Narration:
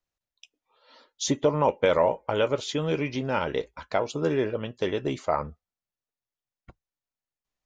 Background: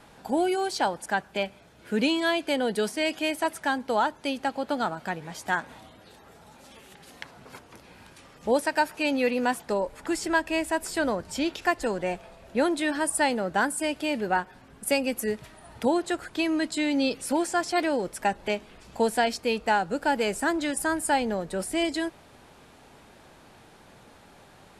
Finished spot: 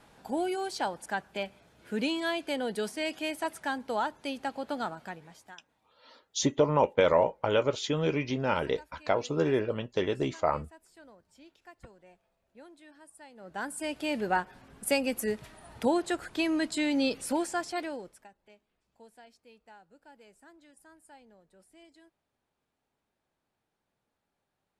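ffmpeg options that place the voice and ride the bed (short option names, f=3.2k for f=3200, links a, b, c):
-filter_complex "[0:a]adelay=5150,volume=-1.5dB[a];[1:a]volume=19.5dB,afade=t=out:st=4.84:d=0.73:silence=0.0794328,afade=t=in:st=13.34:d=0.86:silence=0.0530884,afade=t=out:st=17.18:d=1.1:silence=0.0398107[b];[a][b]amix=inputs=2:normalize=0"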